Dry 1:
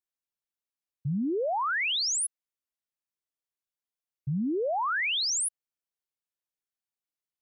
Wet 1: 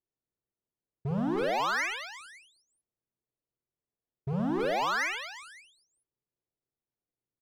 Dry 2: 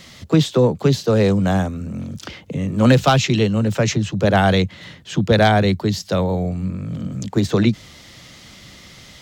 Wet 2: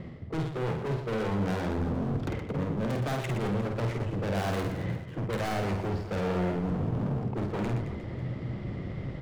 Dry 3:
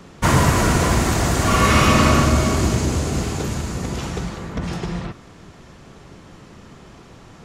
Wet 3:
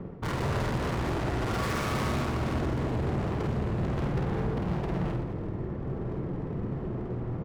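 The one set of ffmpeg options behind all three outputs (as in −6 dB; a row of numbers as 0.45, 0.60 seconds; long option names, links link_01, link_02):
-af "equalizer=frequency=125:width_type=o:width=0.33:gain=7,equalizer=frequency=400:width_type=o:width=0.33:gain=10,equalizer=frequency=2000:width_type=o:width=0.33:gain=4,equalizer=frequency=4000:width_type=o:width=0.33:gain=-3,equalizer=frequency=6300:width_type=o:width=0.33:gain=-8,adynamicsmooth=sensitivity=0.5:basefreq=650,aemphasis=mode=production:type=50fm,areverse,acompressor=threshold=-28dB:ratio=8,areverse,aeval=exprs='0.141*(cos(1*acos(clip(val(0)/0.141,-1,1)))-cos(1*PI/2))+0.0158*(cos(4*acos(clip(val(0)/0.141,-1,1)))-cos(4*PI/2))+0.0447*(cos(5*acos(clip(val(0)/0.141,-1,1)))-cos(5*PI/2))':channel_layout=same,bandreject=frequency=400:width=12,asoftclip=type=hard:threshold=-30dB,aecho=1:1:50|120|218|355.2|547.3:0.631|0.398|0.251|0.158|0.1"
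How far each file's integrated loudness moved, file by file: −3.0, −13.5, −12.5 LU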